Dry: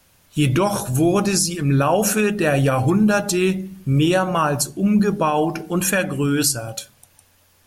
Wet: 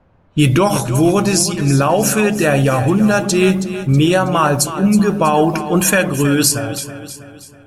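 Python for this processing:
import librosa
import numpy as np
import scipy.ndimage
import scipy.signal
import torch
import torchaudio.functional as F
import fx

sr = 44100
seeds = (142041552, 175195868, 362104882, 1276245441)

p1 = fx.rider(x, sr, range_db=3, speed_s=0.5)
p2 = fx.env_lowpass(p1, sr, base_hz=940.0, full_db=-16.0)
p3 = p2 + fx.echo_feedback(p2, sr, ms=322, feedback_pct=46, wet_db=-12, dry=0)
y = p3 * librosa.db_to_amplitude(4.5)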